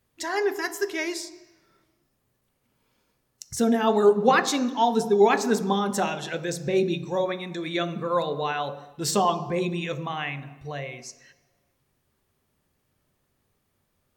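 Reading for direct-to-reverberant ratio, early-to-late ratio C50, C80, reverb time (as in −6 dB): 9.0 dB, 13.0 dB, 15.0 dB, 1.1 s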